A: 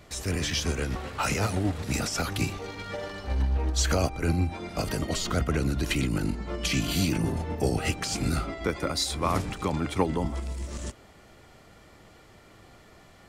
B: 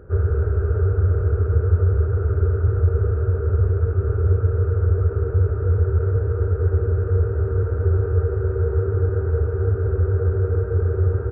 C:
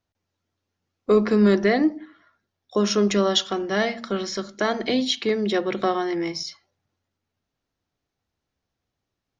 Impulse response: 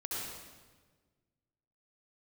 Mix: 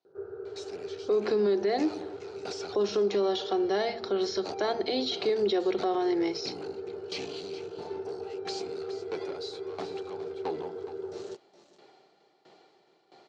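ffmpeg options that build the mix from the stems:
-filter_complex "[0:a]asoftclip=type=tanh:threshold=-29dB,aeval=exprs='val(0)*pow(10,-18*if(lt(mod(1.5*n/s,1),2*abs(1.5)/1000),1-mod(1.5*n/s,1)/(2*abs(1.5)/1000),(mod(1.5*n/s,1)-2*abs(1.5)/1000)/(1-2*abs(1.5)/1000))/20)':c=same,adelay=450,volume=-3.5dB,asplit=2[a][b];[b]volume=-12.5dB[c];[1:a]adelay=50,volume=-16.5dB[d];[2:a]deesser=0.7,volume=-4.5dB[e];[c]aecho=0:1:417:1[f];[a][d][e][f]amix=inputs=4:normalize=0,highpass=f=190:w=0.5412,highpass=f=190:w=1.3066,equalizer=f=230:t=q:w=4:g=-9,equalizer=f=390:t=q:w=4:g=10,equalizer=f=790:t=q:w=4:g=9,equalizer=f=1.2k:t=q:w=4:g=-3,equalizer=f=1.9k:t=q:w=4:g=-4,equalizer=f=4.2k:t=q:w=4:g=8,lowpass=f=6.1k:w=0.5412,lowpass=f=6.1k:w=1.3066,alimiter=limit=-19dB:level=0:latency=1:release=108"

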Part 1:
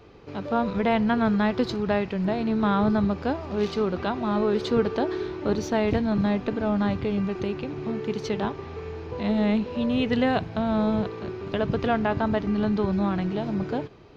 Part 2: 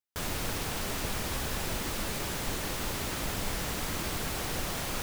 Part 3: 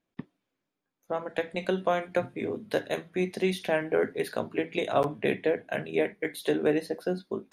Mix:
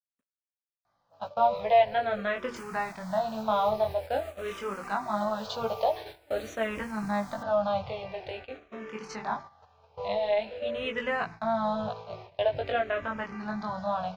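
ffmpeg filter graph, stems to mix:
-filter_complex "[0:a]flanger=delay=17.5:depth=5.6:speed=0.19,bandreject=f=60:t=h:w=6,bandreject=f=120:t=h:w=6,bandreject=f=180:t=h:w=6,bandreject=f=240:t=h:w=6,bandreject=f=300:t=h:w=6,adelay=850,volume=2.5dB[a];[1:a]adelay=2400,volume=-12.5dB[b];[2:a]lowpass=1.2k,acrusher=bits=7:mix=0:aa=0.000001,volume=-16.5dB[c];[b][c]amix=inputs=2:normalize=0,alimiter=level_in=12dB:limit=-24dB:level=0:latency=1:release=390,volume=-12dB,volume=0dB[d];[a][d]amix=inputs=2:normalize=0,agate=range=-17dB:threshold=-33dB:ratio=16:detection=peak,lowshelf=f=470:t=q:w=3:g=-8.5,asplit=2[e][f];[f]afreqshift=-0.47[g];[e][g]amix=inputs=2:normalize=1"

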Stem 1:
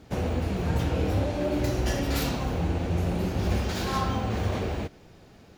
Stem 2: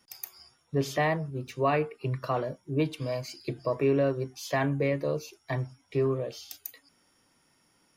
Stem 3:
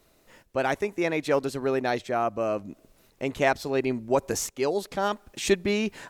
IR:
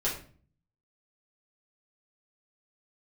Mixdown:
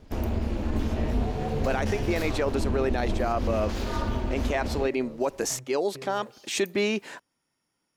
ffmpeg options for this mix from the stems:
-filter_complex "[0:a]aeval=exprs='val(0)*sin(2*PI*150*n/s)':c=same,lowshelf=f=90:g=10.5,volume=-1dB[a];[1:a]acompressor=threshold=-29dB:ratio=6,volume=-11dB[b];[2:a]highpass=230,adelay=1100,volume=2dB[c];[a][c]amix=inputs=2:normalize=0,highshelf=f=11k:g=-6.5,alimiter=limit=-16.5dB:level=0:latency=1:release=30,volume=0dB[d];[b][d]amix=inputs=2:normalize=0"

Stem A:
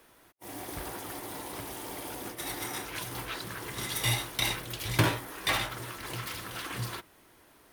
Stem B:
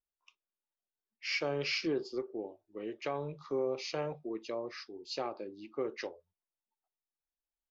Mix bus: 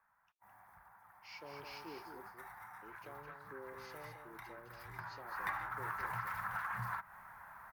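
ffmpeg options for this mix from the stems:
-filter_complex "[0:a]firequalizer=gain_entry='entry(200,0);entry(300,-22);entry(840,12);entry(1600,12);entry(3000,-15);entry(8400,-13);entry(14000,-3)':delay=0.05:min_phase=1,acompressor=threshold=-36dB:ratio=16,volume=-0.5dB,afade=t=in:st=1.3:d=0.29:silence=0.354813,afade=t=in:st=4.88:d=0.62:silence=0.237137[a];[1:a]volume=-18.5dB,asplit=3[b][c][d];[b]atrim=end=2.29,asetpts=PTS-STARTPTS,afade=t=out:st=2.286:d=0.004:c=hsin[e];[c]atrim=start=2.29:end=2.82,asetpts=PTS-STARTPTS,volume=0[f];[d]atrim=start=2.82,asetpts=PTS-STARTPTS,afade=t=in:d=0.004:c=hsin[g];[e][f][g]concat=n=3:v=0:a=1,asplit=2[h][i];[i]volume=-6.5dB,aecho=0:1:212:1[j];[a][h][j]amix=inputs=3:normalize=0"

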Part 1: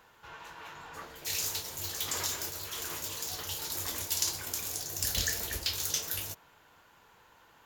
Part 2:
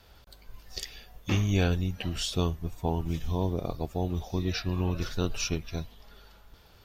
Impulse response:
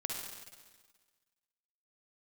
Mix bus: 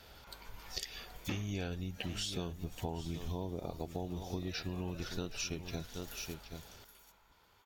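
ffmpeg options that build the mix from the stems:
-filter_complex "[0:a]acompressor=threshold=-39dB:ratio=6,highpass=320,aecho=1:1:0.9:0.52,volume=-9.5dB,asplit=2[a][b];[b]volume=-10dB[c];[1:a]lowshelf=f=100:g=-8,volume=2.5dB,asplit=3[d][e][f];[e]volume=-14dB[g];[f]apad=whole_len=337845[h];[a][h]sidechaincompress=threshold=-47dB:ratio=3:attack=16:release=161[i];[c][g]amix=inputs=2:normalize=0,aecho=0:1:776:1[j];[i][d][j]amix=inputs=3:normalize=0,equalizer=f=1.1k:w=6.3:g=-5.5,acompressor=threshold=-36dB:ratio=6"

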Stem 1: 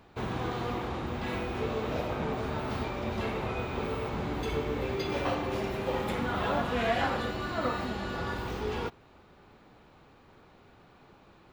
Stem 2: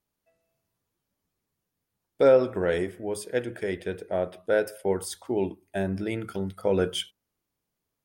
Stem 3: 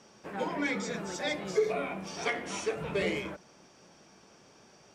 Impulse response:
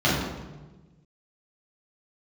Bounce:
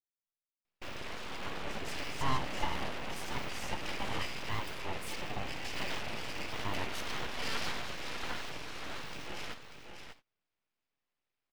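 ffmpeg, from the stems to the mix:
-filter_complex "[0:a]equalizer=f=2.5k:w=2.2:g=14,adelay=650,volume=-8dB,asplit=2[a][b];[b]volume=-8dB[c];[1:a]volume=-11.5dB[d];[2:a]equalizer=f=2k:t=o:w=1.3:g=-12,adelay=1050,volume=-4.5dB[e];[c]aecho=0:1:592:1[f];[a][d][e][f]amix=inputs=4:normalize=0,agate=range=-26dB:threshold=-54dB:ratio=16:detection=peak,aeval=exprs='abs(val(0))':c=same"

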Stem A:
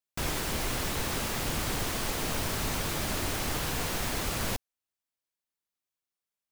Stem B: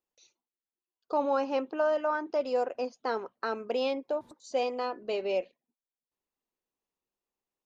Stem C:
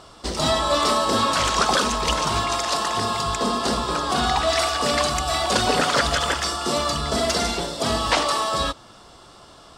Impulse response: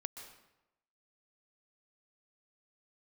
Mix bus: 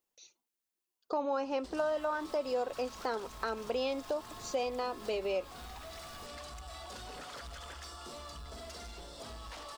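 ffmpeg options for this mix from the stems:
-filter_complex "[0:a]adelay=1700,volume=-11.5dB[a];[1:a]highshelf=f=5.1k:g=6,volume=2dB,asplit=2[b][c];[2:a]asubboost=boost=6.5:cutoff=57,asoftclip=type=tanh:threshold=-19dB,adelay=1400,volume=-12.5dB[d];[c]apad=whole_len=362442[e];[a][e]sidechaincompress=threshold=-32dB:ratio=8:attack=16:release=101[f];[f][d]amix=inputs=2:normalize=0,acrusher=bits=6:mode=log:mix=0:aa=0.000001,acompressor=threshold=-44dB:ratio=10,volume=0dB[g];[b][g]amix=inputs=2:normalize=0,acompressor=threshold=-35dB:ratio=2"

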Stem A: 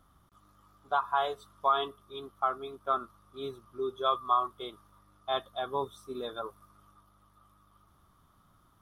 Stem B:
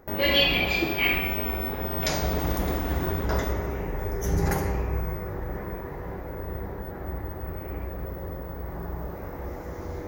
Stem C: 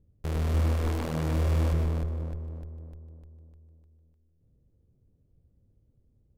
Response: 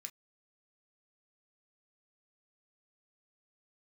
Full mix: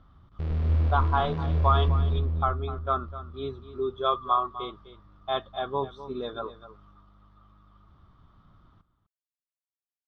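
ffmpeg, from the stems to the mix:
-filter_complex "[0:a]volume=2dB,asplit=2[a][b];[b]volume=-14dB[c];[2:a]adelay=150,volume=-7dB,asplit=2[d][e];[e]volume=-8.5dB[f];[c][f]amix=inputs=2:normalize=0,aecho=0:1:253:1[g];[a][d][g]amix=inputs=3:normalize=0,lowpass=f=4.3k:w=0.5412,lowpass=f=4.3k:w=1.3066,lowshelf=f=200:g=9.5"

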